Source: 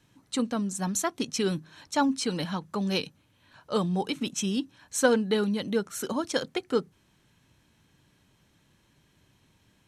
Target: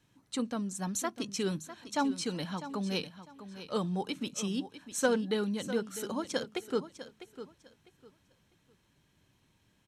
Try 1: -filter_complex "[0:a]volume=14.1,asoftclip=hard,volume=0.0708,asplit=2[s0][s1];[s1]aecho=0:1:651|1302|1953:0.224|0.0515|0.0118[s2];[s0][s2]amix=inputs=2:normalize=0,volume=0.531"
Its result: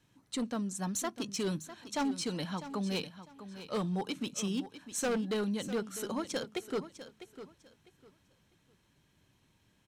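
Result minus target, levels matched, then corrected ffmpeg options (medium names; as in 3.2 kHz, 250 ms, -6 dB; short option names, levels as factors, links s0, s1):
overload inside the chain: distortion +26 dB
-filter_complex "[0:a]volume=3.76,asoftclip=hard,volume=0.266,asplit=2[s0][s1];[s1]aecho=0:1:651|1302|1953:0.224|0.0515|0.0118[s2];[s0][s2]amix=inputs=2:normalize=0,volume=0.531"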